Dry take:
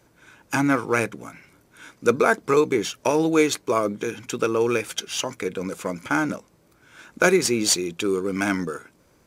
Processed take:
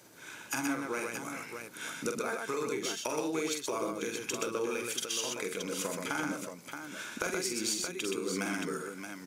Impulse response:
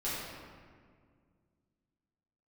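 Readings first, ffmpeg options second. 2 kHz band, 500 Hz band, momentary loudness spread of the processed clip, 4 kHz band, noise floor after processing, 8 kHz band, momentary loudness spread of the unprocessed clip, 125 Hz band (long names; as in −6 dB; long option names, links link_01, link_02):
−10.5 dB, −13.0 dB, 9 LU, −7.5 dB, −49 dBFS, −6.5 dB, 11 LU, −14.5 dB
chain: -af "highpass=150,highshelf=frequency=2900:gain=8.5,acompressor=threshold=-35dB:ratio=5,aecho=1:1:46|125|625:0.531|0.668|0.447"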